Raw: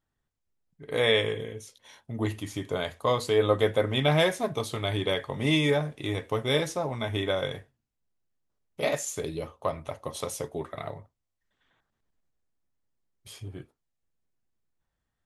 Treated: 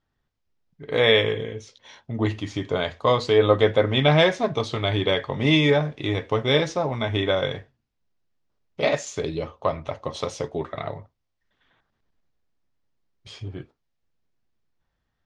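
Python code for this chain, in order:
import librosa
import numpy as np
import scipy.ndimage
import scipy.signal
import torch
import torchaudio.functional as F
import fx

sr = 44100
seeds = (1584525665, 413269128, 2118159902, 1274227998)

y = scipy.signal.sosfilt(scipy.signal.butter(4, 5700.0, 'lowpass', fs=sr, output='sos'), x)
y = y * librosa.db_to_amplitude(5.5)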